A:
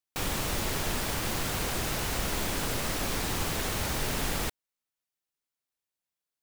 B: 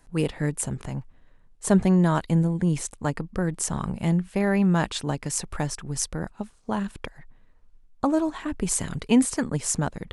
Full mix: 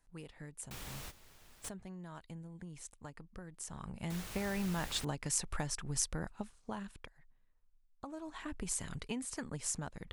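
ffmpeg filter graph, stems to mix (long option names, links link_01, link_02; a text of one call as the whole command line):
ffmpeg -i stem1.wav -i stem2.wav -filter_complex "[0:a]adelay=550,volume=-14.5dB,asplit=3[link_01][link_02][link_03];[link_01]atrim=end=1.69,asetpts=PTS-STARTPTS,afade=type=out:start_time=1.686:duration=0.004:curve=hsin[link_04];[link_02]atrim=start=1.69:end=4.1,asetpts=PTS-STARTPTS,volume=0[link_05];[link_03]atrim=start=4.1,asetpts=PTS-STARTPTS,afade=type=in:duration=0.004:curve=hsin[link_06];[link_04][link_05][link_06]concat=n=3:v=0:a=1[link_07];[1:a]acompressor=threshold=-26dB:ratio=5,volume=6dB,afade=type=in:start_time=3.65:duration=0.77:silence=0.266073,afade=type=out:start_time=6.38:duration=0.74:silence=0.223872,afade=type=in:start_time=7.97:duration=0.43:silence=0.354813,asplit=2[link_08][link_09];[link_09]apad=whole_len=307504[link_10];[link_07][link_10]sidechaingate=range=-15dB:threshold=-55dB:ratio=16:detection=peak[link_11];[link_11][link_08]amix=inputs=2:normalize=0,equalizer=frequency=290:width=0.37:gain=-5.5" out.wav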